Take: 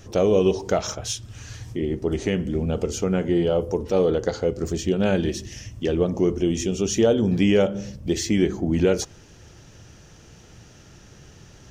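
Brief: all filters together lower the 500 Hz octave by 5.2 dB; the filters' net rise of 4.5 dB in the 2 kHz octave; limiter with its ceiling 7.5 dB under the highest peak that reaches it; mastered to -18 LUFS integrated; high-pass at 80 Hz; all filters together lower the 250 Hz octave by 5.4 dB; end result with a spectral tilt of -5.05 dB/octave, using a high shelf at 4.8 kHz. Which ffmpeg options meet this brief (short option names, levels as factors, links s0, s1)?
-af "highpass=80,equalizer=f=250:t=o:g=-6.5,equalizer=f=500:t=o:g=-4.5,equalizer=f=2000:t=o:g=7.5,highshelf=f=4800:g=-8,volume=3.76,alimiter=limit=0.596:level=0:latency=1"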